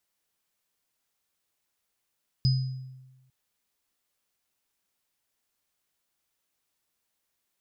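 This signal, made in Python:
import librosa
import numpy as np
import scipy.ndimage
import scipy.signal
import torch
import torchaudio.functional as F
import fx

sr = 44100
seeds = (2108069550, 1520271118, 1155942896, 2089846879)

y = fx.additive_free(sr, length_s=0.85, hz=130.0, level_db=-18.0, upper_db=(-9.0,), decay_s=1.15, upper_decays_s=(0.57,), upper_hz=(5000.0,))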